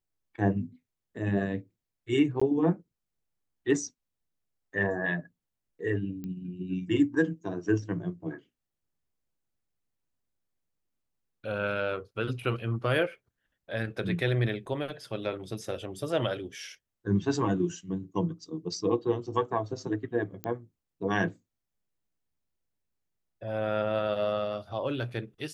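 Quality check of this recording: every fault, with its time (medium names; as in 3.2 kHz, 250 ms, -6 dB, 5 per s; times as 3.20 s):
2.40–2.42 s: dropout 15 ms
6.24 s: pop -27 dBFS
20.44 s: pop -18 dBFS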